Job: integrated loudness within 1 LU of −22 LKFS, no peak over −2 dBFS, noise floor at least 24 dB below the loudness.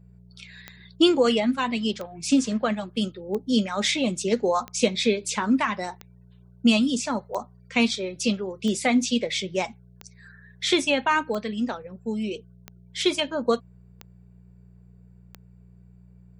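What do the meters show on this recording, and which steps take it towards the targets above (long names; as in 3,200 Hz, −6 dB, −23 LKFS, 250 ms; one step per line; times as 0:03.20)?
number of clicks 12; mains hum 60 Hz; hum harmonics up to 180 Hz; level of the hum −49 dBFS; integrated loudness −24.5 LKFS; sample peak −6.0 dBFS; target loudness −22.0 LKFS
→ click removal
hum removal 60 Hz, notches 3
level +2.5 dB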